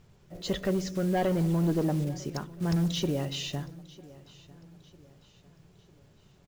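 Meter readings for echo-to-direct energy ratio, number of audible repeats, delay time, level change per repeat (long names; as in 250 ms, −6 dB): −20.0 dB, 2, 950 ms, −7.5 dB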